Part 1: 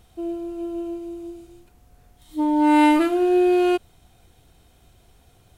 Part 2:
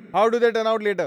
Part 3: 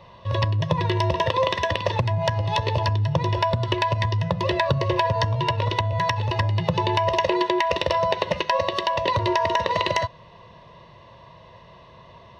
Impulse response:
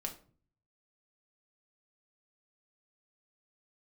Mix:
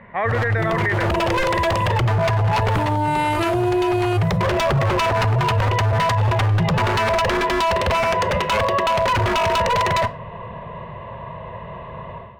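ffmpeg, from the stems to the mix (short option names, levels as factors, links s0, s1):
-filter_complex "[0:a]agate=range=0.282:threshold=0.00631:ratio=16:detection=peak,adelay=400,volume=1.19[s0];[1:a]lowpass=f=1900:t=q:w=8.9,volume=0.501[s1];[2:a]lowpass=f=2700:w=0.5412,lowpass=f=2700:w=1.3066,aemphasis=mode=reproduction:type=75fm,aeval=exprs='0.0944*(abs(mod(val(0)/0.0944+3,4)-2)-1)':c=same,volume=0.891,asplit=2[s2][s3];[s3]volume=0.266[s4];[3:a]atrim=start_sample=2205[s5];[s4][s5]afir=irnorm=-1:irlink=0[s6];[s0][s1][s2][s6]amix=inputs=4:normalize=0,equalizer=f=310:w=6.3:g=-14,dynaudnorm=f=100:g=5:m=4.73,alimiter=limit=0.237:level=0:latency=1:release=13"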